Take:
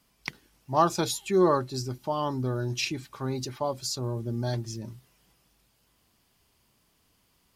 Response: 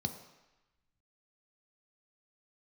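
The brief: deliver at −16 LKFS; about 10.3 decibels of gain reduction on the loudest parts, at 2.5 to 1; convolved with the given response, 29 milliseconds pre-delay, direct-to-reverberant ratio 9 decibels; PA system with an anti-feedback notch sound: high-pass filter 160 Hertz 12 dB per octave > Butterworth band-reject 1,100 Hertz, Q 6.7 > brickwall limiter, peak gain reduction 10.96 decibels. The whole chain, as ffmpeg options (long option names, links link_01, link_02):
-filter_complex "[0:a]acompressor=threshold=-33dB:ratio=2.5,asplit=2[link_01][link_02];[1:a]atrim=start_sample=2205,adelay=29[link_03];[link_02][link_03]afir=irnorm=-1:irlink=0,volume=-10.5dB[link_04];[link_01][link_04]amix=inputs=2:normalize=0,highpass=160,asuperstop=centerf=1100:order=8:qfactor=6.7,volume=21.5dB,alimiter=limit=-6dB:level=0:latency=1"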